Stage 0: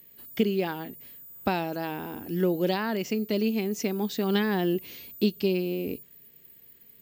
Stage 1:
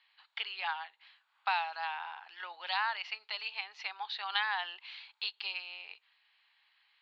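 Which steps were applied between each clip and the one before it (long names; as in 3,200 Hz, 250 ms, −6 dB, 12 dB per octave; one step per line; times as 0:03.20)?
Chebyshev band-pass filter 830–4,300 Hz, order 4
level +1.5 dB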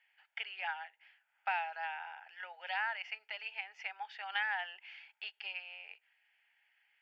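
phaser with its sweep stopped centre 1,100 Hz, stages 6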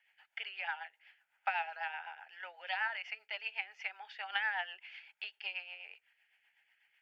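rotating-speaker cabinet horn 8 Hz
level +3.5 dB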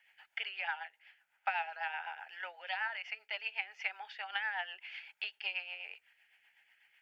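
speech leveller within 4 dB 0.5 s
level +1 dB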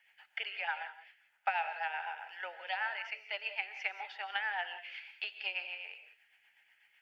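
dynamic equaliser 430 Hz, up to +6 dB, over −55 dBFS, Q 0.92
reverb whose tail is shaped and stops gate 210 ms rising, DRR 10 dB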